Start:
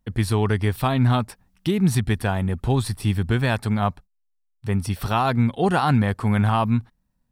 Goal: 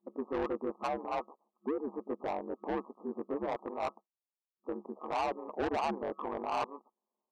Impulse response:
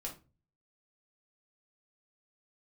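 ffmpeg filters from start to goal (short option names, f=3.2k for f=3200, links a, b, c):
-af "afftfilt=real='re*between(b*sr/4096,270,1200)':imag='im*between(b*sr/4096,270,1200)':win_size=4096:overlap=0.75,asoftclip=type=tanh:threshold=-26.5dB,aeval=exprs='val(0)*sin(2*PI*73*n/s)':c=same"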